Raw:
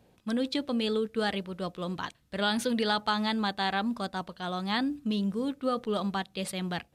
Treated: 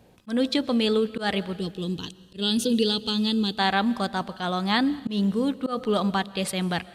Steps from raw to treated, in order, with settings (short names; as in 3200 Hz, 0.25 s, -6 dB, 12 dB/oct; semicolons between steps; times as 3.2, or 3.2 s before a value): spectral gain 1.54–3.58, 500–2500 Hz -17 dB; digital reverb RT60 1.4 s, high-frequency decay 0.95×, pre-delay 90 ms, DRR 19 dB; auto swell 0.126 s; gain +6.5 dB